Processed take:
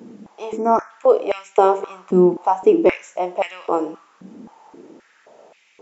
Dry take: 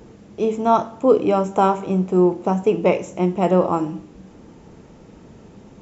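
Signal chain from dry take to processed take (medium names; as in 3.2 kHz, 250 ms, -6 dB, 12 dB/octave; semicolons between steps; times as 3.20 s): time-frequency box 0.58–0.90 s, 2.5–5 kHz -25 dB; step-sequenced high-pass 3.8 Hz 230–2300 Hz; trim -2 dB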